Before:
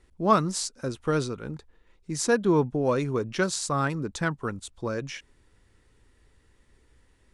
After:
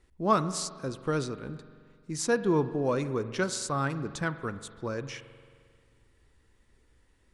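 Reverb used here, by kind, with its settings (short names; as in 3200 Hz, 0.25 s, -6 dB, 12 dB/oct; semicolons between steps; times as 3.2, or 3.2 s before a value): spring tank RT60 2 s, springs 44 ms, chirp 25 ms, DRR 12.5 dB; gain -3.5 dB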